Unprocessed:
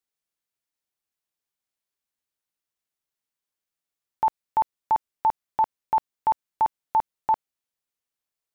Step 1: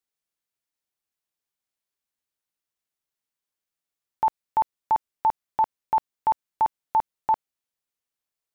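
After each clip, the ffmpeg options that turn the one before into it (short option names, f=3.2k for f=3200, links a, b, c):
-af anull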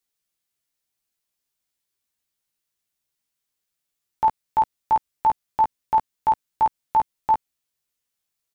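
-filter_complex "[0:a]equalizer=f=760:w=0.35:g=-5.5,asplit=2[a][b];[b]adelay=15,volume=-3.5dB[c];[a][c]amix=inputs=2:normalize=0,volume=6dB"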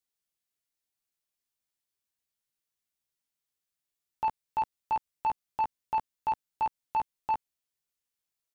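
-af "asoftclip=type=tanh:threshold=-15dB,volume=-7dB"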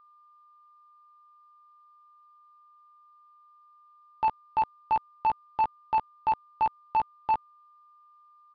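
-af "aeval=exprs='val(0)+0.00112*sin(2*PI*1200*n/s)':c=same,aresample=11025,aresample=44100,volume=3.5dB"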